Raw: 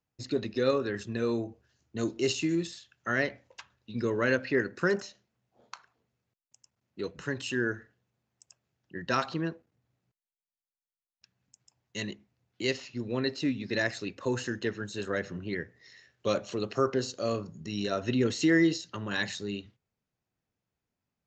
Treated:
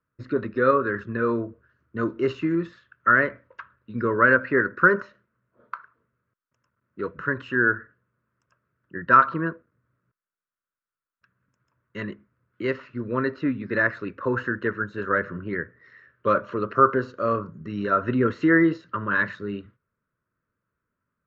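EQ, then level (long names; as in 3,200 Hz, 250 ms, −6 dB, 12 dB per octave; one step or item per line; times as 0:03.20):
dynamic equaliser 900 Hz, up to +5 dB, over −47 dBFS, Q 2.1
Butterworth band-reject 780 Hz, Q 2.4
low-pass with resonance 1,400 Hz, resonance Q 3.8
+4.0 dB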